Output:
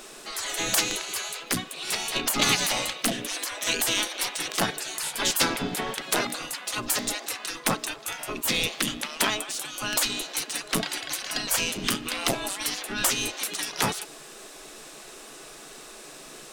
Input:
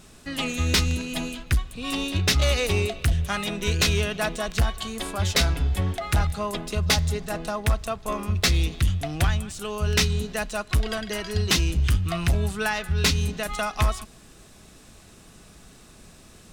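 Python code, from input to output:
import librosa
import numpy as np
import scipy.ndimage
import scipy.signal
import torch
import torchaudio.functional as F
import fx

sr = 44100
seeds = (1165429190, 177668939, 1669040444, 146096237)

y = fx.add_hum(x, sr, base_hz=60, snr_db=11)
y = fx.spec_gate(y, sr, threshold_db=-20, keep='weak')
y = y * librosa.db_to_amplitude(8.5)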